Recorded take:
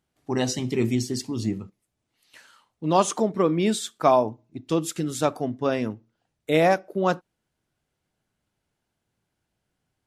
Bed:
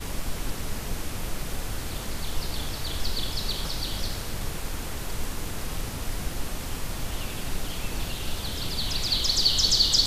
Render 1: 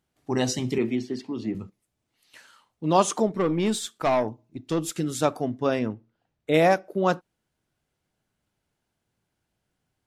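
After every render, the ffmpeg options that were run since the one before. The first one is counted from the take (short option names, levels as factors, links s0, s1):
-filter_complex "[0:a]asettb=1/sr,asplit=3[s0][s1][s2];[s0]atrim=end=0.784[s3];[s1]atrim=start=0.78:end=1.55,asetpts=PTS-STARTPTS,afade=t=in:d=0.004:c=qsin,afade=t=out:st=0.766:d=0.004:c=qsin,acrossover=split=190 3600:gain=0.158 1 0.0708[s4][s5][s6];[s4][s5][s6]amix=inputs=3:normalize=0[s7];[s2]atrim=start=1.546[s8];[s3][s7]acrossfade=d=0.004:c1=hsin:c2=qsin[s9];[s9][s8]acrossfade=d=0.004:c1=qsin:c2=hsin,asettb=1/sr,asplit=3[s10][s11][s12];[s10]atrim=end=3.274[s13];[s11]atrim=start=3.27:end=4.95,asetpts=PTS-STARTPTS,afade=t=in:d=0.004:c=qsin,afade=t=out:st=1.676:d=0.004:c=qsin,aeval=exprs='(tanh(7.08*val(0)+0.25)-tanh(0.25))/7.08':c=same[s14];[s12]atrim=start=4.946[s15];[s13][s14]acrossfade=d=0.004:c1=hsin:c2=qsin[s16];[s16][s15]acrossfade=d=0.004:c1=qsin:c2=hsin,asettb=1/sr,asplit=3[s17][s18][s19];[s17]atrim=end=5.794[s20];[s18]atrim=start=5.79:end=6.54,asetpts=PTS-STARTPTS,afade=t=in:d=0.004:c=qsin,afade=t=out:st=0.746:d=0.004:c=qsin,aemphasis=mode=reproduction:type=50fm[s21];[s19]atrim=start=6.536[s22];[s20][s21]acrossfade=d=0.004:c1=hsin:c2=qsin[s23];[s23][s22]acrossfade=d=0.004:c1=qsin:c2=hsin"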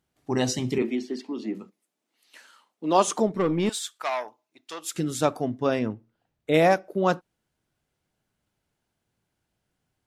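-filter_complex "[0:a]asettb=1/sr,asplit=3[s0][s1][s2];[s0]atrim=end=0.824[s3];[s1]atrim=start=0.82:end=3.08,asetpts=PTS-STARTPTS,afade=t=in:d=0.004:c=qsin,afade=t=out:st=2.256:d=0.004:c=qsin,highpass=f=220:w=0.5412,highpass=f=220:w=1.3066[s4];[s2]atrim=start=3.076[s5];[s3][s4]acrossfade=d=0.004:c1=hsin:c2=qsin[s6];[s6][s5]acrossfade=d=0.004:c1=qsin:c2=hsin,asettb=1/sr,asplit=3[s7][s8][s9];[s7]atrim=end=3.694[s10];[s8]atrim=start=3.69:end=4.94,asetpts=PTS-STARTPTS,afade=t=in:d=0.004:c=qsin,afade=t=out:st=1.246:d=0.004:c=qsin,highpass=950[s11];[s9]atrim=start=4.936[s12];[s10][s11]acrossfade=d=0.004:c1=hsin:c2=qsin[s13];[s13][s12]acrossfade=d=0.004:c1=qsin:c2=hsin"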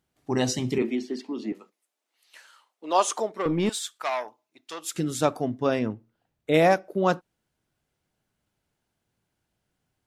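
-filter_complex "[0:a]asettb=1/sr,asplit=3[s0][s1][s2];[s0]atrim=end=1.524[s3];[s1]atrim=start=1.52:end=3.46,asetpts=PTS-STARTPTS,afade=t=in:d=0.004:c=qsin,afade=t=out:st=1.936:d=0.004:c=qsin,highpass=520[s4];[s2]atrim=start=3.456[s5];[s3][s4]acrossfade=d=0.004:c1=hsin:c2=qsin[s6];[s6][s5]acrossfade=d=0.004:c1=qsin:c2=hsin"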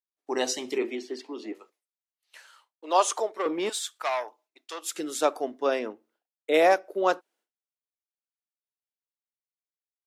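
-af "agate=range=0.0224:threshold=0.00158:ratio=3:detection=peak,highpass=f=340:w=0.5412,highpass=f=340:w=1.3066"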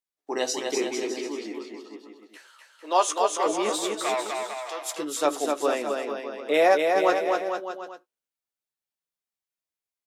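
-filter_complex "[0:a]asplit=2[s0][s1];[s1]adelay=14,volume=0.355[s2];[s0][s2]amix=inputs=2:normalize=0,aecho=1:1:250|450|610|738|840.4:0.631|0.398|0.251|0.158|0.1"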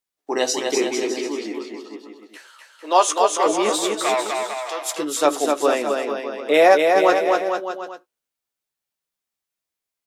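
-af "volume=2,alimiter=limit=0.708:level=0:latency=1"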